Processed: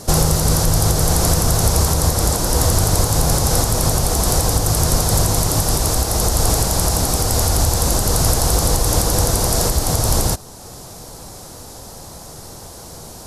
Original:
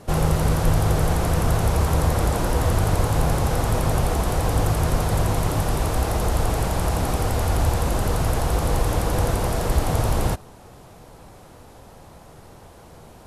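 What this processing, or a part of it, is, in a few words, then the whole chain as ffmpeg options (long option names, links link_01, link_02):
over-bright horn tweeter: -af "highshelf=frequency=3700:width_type=q:width=1.5:gain=10.5,alimiter=limit=-11.5dB:level=0:latency=1:release=429,volume=7.5dB"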